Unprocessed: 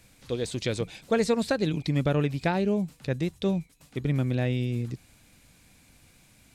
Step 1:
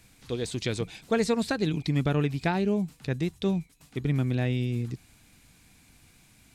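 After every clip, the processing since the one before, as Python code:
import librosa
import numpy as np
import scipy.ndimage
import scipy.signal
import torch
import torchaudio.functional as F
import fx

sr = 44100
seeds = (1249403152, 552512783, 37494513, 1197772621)

y = fx.peak_eq(x, sr, hz=550.0, db=-8.5, octaves=0.24)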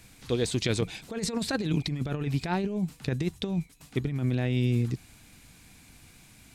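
y = fx.over_compress(x, sr, threshold_db=-28.0, ratio=-0.5)
y = y * librosa.db_to_amplitude(1.5)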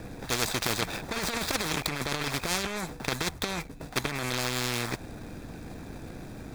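y = scipy.signal.medfilt(x, 41)
y = fx.notch(y, sr, hz=2900.0, q=5.9)
y = fx.spectral_comp(y, sr, ratio=4.0)
y = y * librosa.db_to_amplitude(7.5)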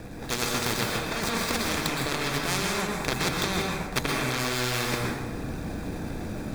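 y = fx.rider(x, sr, range_db=4, speed_s=0.5)
y = fx.rev_plate(y, sr, seeds[0], rt60_s=1.3, hf_ratio=0.55, predelay_ms=105, drr_db=-1.0)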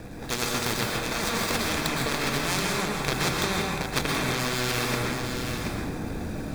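y = x + 10.0 ** (-6.0 / 20.0) * np.pad(x, (int(728 * sr / 1000.0), 0))[:len(x)]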